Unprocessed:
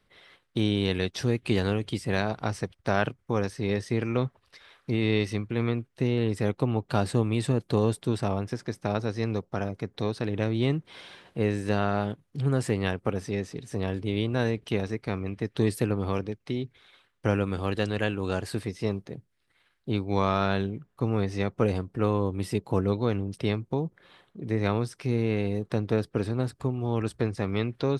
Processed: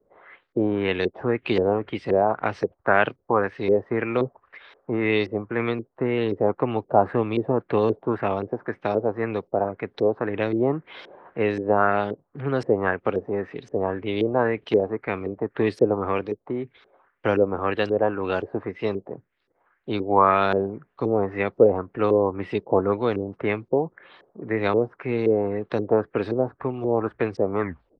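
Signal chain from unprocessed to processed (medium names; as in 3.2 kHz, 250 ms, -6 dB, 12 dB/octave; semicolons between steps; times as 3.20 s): tape stop on the ending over 0.40 s; three-band isolator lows -12 dB, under 280 Hz, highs -14 dB, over 2.4 kHz; LFO low-pass saw up 1.9 Hz 400–5600 Hz; trim +6 dB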